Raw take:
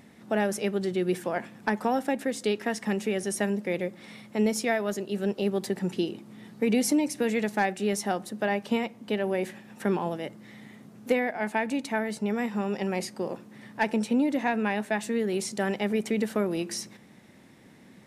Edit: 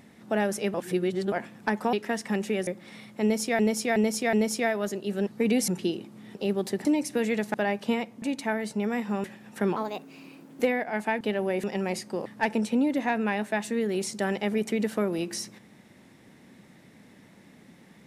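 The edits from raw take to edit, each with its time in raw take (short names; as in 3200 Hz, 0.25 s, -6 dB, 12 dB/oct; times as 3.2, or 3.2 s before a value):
0.74–1.32 reverse
1.93–2.5 cut
3.24–3.83 cut
4.38–4.75 loop, 4 plays
5.32–5.82 swap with 6.49–6.9
7.59–8.37 cut
9.05–9.48 swap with 11.68–12.7
10–11.07 speed 128%
13.32–13.64 cut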